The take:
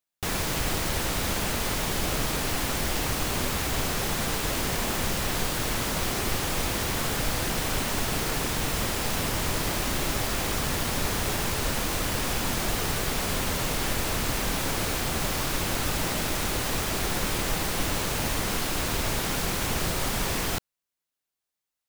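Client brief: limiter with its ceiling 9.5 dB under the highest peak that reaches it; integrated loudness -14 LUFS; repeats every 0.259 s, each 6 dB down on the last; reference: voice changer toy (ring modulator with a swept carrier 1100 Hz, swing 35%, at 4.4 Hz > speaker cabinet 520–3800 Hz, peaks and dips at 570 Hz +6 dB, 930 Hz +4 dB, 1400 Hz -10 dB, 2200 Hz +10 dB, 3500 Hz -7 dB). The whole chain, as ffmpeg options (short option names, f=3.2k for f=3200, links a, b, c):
-af "alimiter=limit=-23dB:level=0:latency=1,aecho=1:1:259|518|777|1036|1295|1554:0.501|0.251|0.125|0.0626|0.0313|0.0157,aeval=exprs='val(0)*sin(2*PI*1100*n/s+1100*0.35/4.4*sin(2*PI*4.4*n/s))':c=same,highpass=520,equalizer=f=570:t=q:w=4:g=6,equalizer=f=930:t=q:w=4:g=4,equalizer=f=1.4k:t=q:w=4:g=-10,equalizer=f=2.2k:t=q:w=4:g=10,equalizer=f=3.5k:t=q:w=4:g=-7,lowpass=f=3.8k:w=0.5412,lowpass=f=3.8k:w=1.3066,volume=19.5dB"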